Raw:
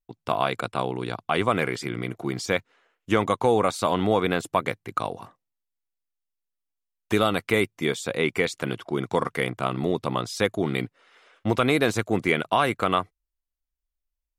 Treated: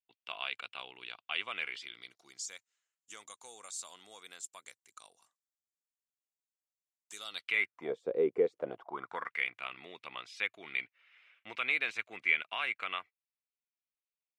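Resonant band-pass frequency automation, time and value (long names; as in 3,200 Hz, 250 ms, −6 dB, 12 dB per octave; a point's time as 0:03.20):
resonant band-pass, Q 3.9
0:01.74 2,800 Hz
0:02.45 7,300 Hz
0:07.16 7,300 Hz
0:07.70 1,600 Hz
0:07.96 440 Hz
0:08.51 440 Hz
0:09.39 2,400 Hz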